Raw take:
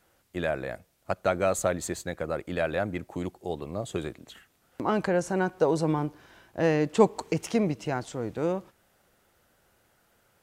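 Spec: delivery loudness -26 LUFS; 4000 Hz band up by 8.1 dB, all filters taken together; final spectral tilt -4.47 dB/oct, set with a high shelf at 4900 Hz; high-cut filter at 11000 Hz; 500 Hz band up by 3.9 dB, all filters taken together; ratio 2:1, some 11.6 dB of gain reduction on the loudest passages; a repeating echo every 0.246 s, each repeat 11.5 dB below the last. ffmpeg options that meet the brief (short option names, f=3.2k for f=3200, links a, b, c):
-af "lowpass=11k,equalizer=f=500:t=o:g=4.5,equalizer=f=4k:t=o:g=7.5,highshelf=f=4.9k:g=5.5,acompressor=threshold=-33dB:ratio=2,aecho=1:1:246|492|738:0.266|0.0718|0.0194,volume=7.5dB"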